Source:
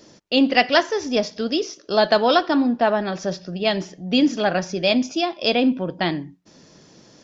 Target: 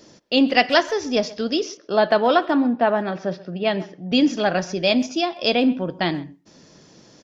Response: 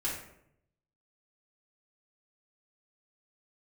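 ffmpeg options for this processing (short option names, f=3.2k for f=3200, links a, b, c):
-filter_complex "[0:a]asettb=1/sr,asplit=3[a][b][c];[a]atrim=end=1.774[d];[b]atrim=start=1.77:end=4.12,asetpts=PTS-STARTPTS,afade=t=in:d=0.004:c=qsin,afade=t=out:st=2.346:d=0.004:c=qsin,highpass=110,lowpass=2.8k[e];[c]atrim=start=4.116[f];[d][e]acrossfade=d=0.004:c1=hsin:c2=qsin[g];[g][f]acrossfade=d=0.004:c1=qsin:c2=hsin,asplit=2[h][i];[i]adelay=130,highpass=300,lowpass=3.4k,asoftclip=type=hard:threshold=-12dB,volume=-19dB[j];[h][j]amix=inputs=2:normalize=0"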